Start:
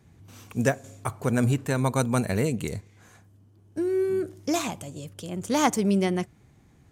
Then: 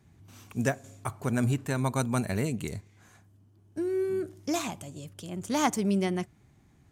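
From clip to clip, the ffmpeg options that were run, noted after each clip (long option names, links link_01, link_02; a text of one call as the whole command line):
ffmpeg -i in.wav -af "equalizer=frequency=490:width_type=o:width=0.2:gain=-7.5,volume=-3.5dB" out.wav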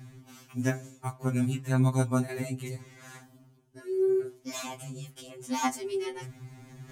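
ffmpeg -i in.wav -af "areverse,acompressor=mode=upward:threshold=-30dB:ratio=2.5,areverse,flanger=delay=8:depth=5.6:regen=-46:speed=1.1:shape=triangular,afftfilt=real='re*2.45*eq(mod(b,6),0)':imag='im*2.45*eq(mod(b,6),0)':win_size=2048:overlap=0.75,volume=3.5dB" out.wav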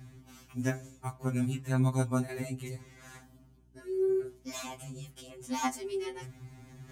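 ffmpeg -i in.wav -af "aeval=exprs='val(0)+0.00112*(sin(2*PI*60*n/s)+sin(2*PI*2*60*n/s)/2+sin(2*PI*3*60*n/s)/3+sin(2*PI*4*60*n/s)/4+sin(2*PI*5*60*n/s)/5)':channel_layout=same,volume=-3dB" out.wav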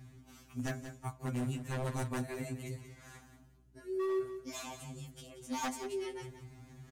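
ffmpeg -i in.wav -af "aeval=exprs='0.0501*(abs(mod(val(0)/0.0501+3,4)-2)-1)':channel_layout=same,aecho=1:1:181|362|543:0.282|0.0564|0.0113,volume=-3.5dB" out.wav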